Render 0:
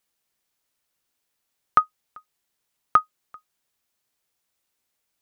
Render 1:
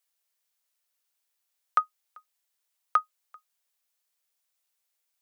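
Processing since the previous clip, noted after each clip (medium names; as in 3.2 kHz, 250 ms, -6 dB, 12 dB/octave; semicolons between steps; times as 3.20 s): steep high-pass 430 Hz; tilt EQ +1.5 dB/octave; trim -6.5 dB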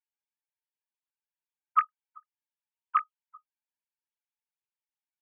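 formants replaced by sine waves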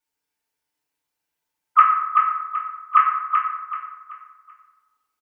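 feedback delay 382 ms, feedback 34%, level -5 dB; FDN reverb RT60 1.1 s, low-frequency decay 0.9×, high-frequency decay 0.55×, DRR -5.5 dB; trim +7 dB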